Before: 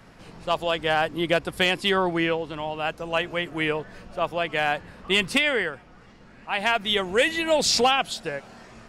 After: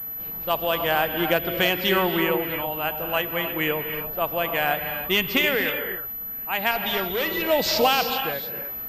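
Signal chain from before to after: 6.71–7.42 s: overload inside the chain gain 23.5 dB; gated-style reverb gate 340 ms rising, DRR 5.5 dB; class-D stage that switches slowly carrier 12 kHz

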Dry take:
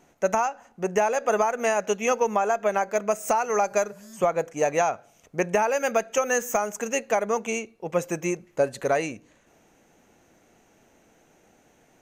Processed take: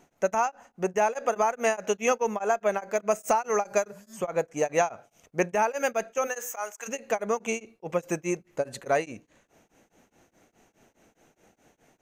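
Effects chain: 6.26–6.87 s: high-pass 430 Hz -> 1 kHz 12 dB/octave; tremolo of two beating tones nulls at 4.8 Hz

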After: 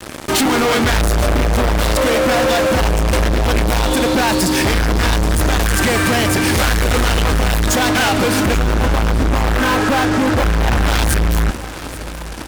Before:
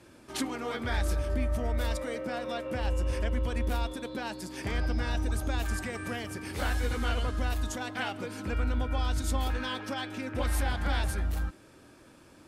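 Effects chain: 8.57–10.85 s: inverse Chebyshev low-pass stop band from 5.5 kHz, stop band 60 dB; fuzz box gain 48 dB, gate -52 dBFS; feedback delay 833 ms, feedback 57%, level -16 dB

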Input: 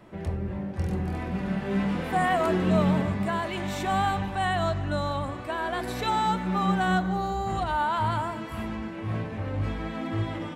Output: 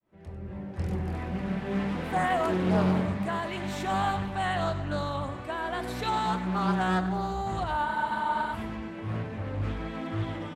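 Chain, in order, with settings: fade-in on the opening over 0.85 s; on a send: delay 98 ms -14 dB; on the sum: spectral freeze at 7.86 s, 0.67 s; loudspeaker Doppler distortion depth 0.37 ms; trim -2.5 dB

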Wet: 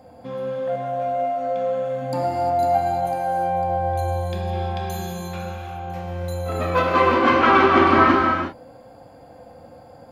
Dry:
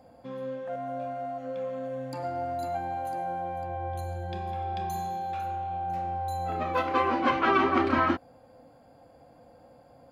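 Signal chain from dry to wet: 2.01–2.77 s: small resonant body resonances 200/780 Hz, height 12 dB -> 8 dB; reverberation, pre-delay 3 ms, DRR -0.5 dB; trim +6.5 dB

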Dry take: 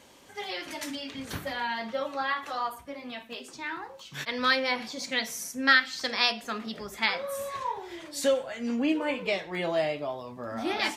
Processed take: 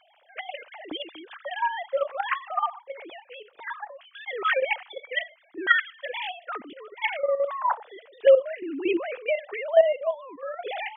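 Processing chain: formants replaced by sine waves; level held to a coarse grid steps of 10 dB; trim +8 dB

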